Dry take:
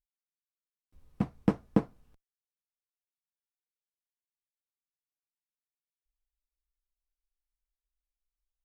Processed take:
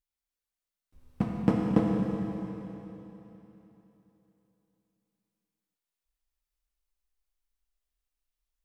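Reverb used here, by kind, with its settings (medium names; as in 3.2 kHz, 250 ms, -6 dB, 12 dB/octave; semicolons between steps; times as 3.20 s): Schroeder reverb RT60 3.4 s, combs from 25 ms, DRR -1 dB; trim +1 dB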